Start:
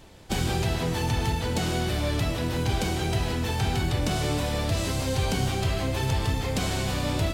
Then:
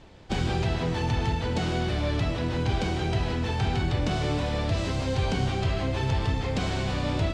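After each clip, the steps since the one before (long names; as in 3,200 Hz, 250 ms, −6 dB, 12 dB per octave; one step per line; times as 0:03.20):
high-frequency loss of the air 110 metres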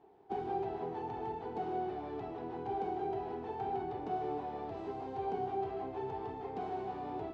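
pair of resonant band-passes 560 Hz, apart 0.88 octaves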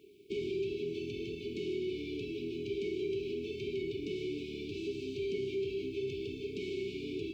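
brick-wall band-stop 440–2,200 Hz
tilt shelving filter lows −7 dB, about 700 Hz
in parallel at +2 dB: brickwall limiter −41 dBFS, peak gain reduction 8 dB
on the sum: level +3 dB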